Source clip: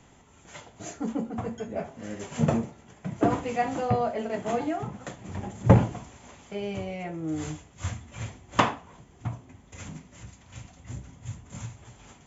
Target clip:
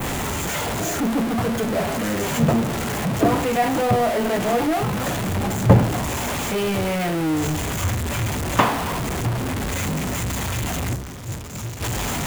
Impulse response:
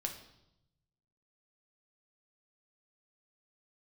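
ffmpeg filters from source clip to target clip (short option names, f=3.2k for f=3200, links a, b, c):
-filter_complex "[0:a]aeval=exprs='val(0)+0.5*0.0841*sgn(val(0))':c=same,asplit=3[a][b][c];[a]afade=t=out:st=10.94:d=0.02[d];[b]agate=range=-33dB:threshold=-21dB:ratio=3:detection=peak,afade=t=in:st=10.94:d=0.02,afade=t=out:st=11.8:d=0.02[e];[c]afade=t=in:st=11.8:d=0.02[f];[d][e][f]amix=inputs=3:normalize=0,adynamicequalizer=threshold=0.00891:dfrequency=5200:dqfactor=1:tfrequency=5200:tqfactor=1:attack=5:release=100:ratio=0.375:range=2:mode=cutabove:tftype=bell,volume=2.5dB"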